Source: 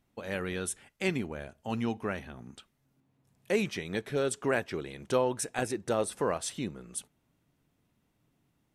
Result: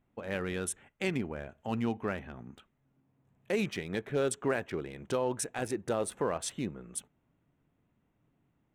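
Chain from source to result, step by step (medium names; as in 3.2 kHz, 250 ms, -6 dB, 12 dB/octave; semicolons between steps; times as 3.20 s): local Wiener filter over 9 samples; peak limiter -20.5 dBFS, peak gain reduction 6 dB; 1.13–2.42 s: tape noise reduction on one side only encoder only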